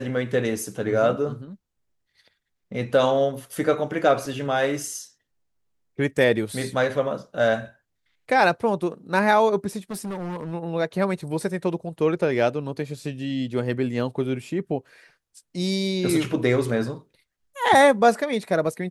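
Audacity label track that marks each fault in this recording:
9.910000	10.530000	clipped -27.5 dBFS

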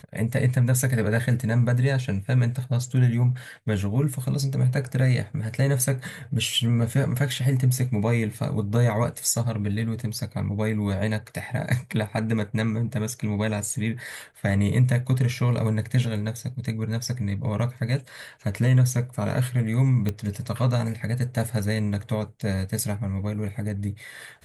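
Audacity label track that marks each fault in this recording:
20.090000	20.090000	pop -14 dBFS

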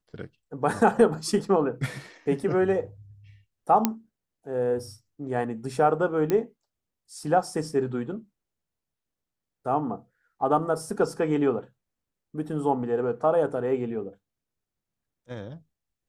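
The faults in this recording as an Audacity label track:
3.850000	3.850000	pop -6 dBFS
6.300000	6.300000	pop -13 dBFS

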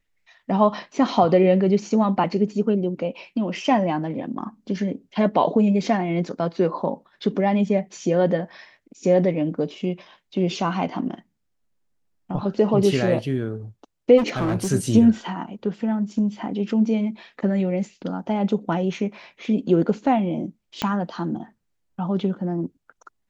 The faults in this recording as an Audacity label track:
14.170000	14.680000	clipped -19 dBFS
20.820000	20.820000	pop -9 dBFS

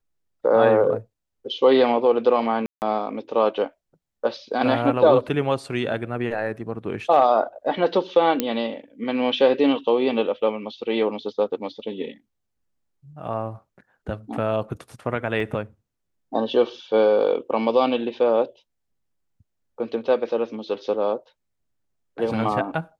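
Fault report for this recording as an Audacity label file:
2.660000	2.820000	gap 0.159 s
8.400000	8.400000	pop -6 dBFS
15.400000	15.400000	gap 2.7 ms

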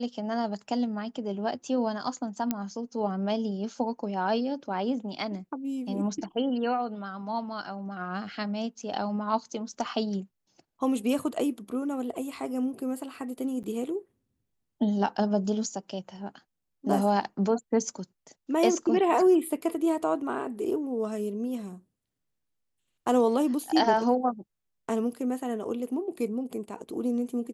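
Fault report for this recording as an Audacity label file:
2.510000	2.510000	pop -13 dBFS
13.630000	13.640000	gap 9 ms

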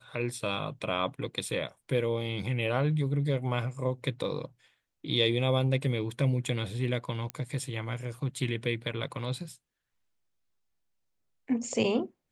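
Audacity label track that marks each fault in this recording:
7.300000	7.300000	pop -18 dBFS

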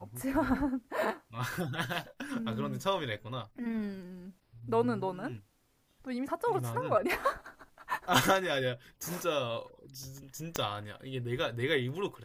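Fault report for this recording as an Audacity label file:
10.560000	10.560000	pop -14 dBFS

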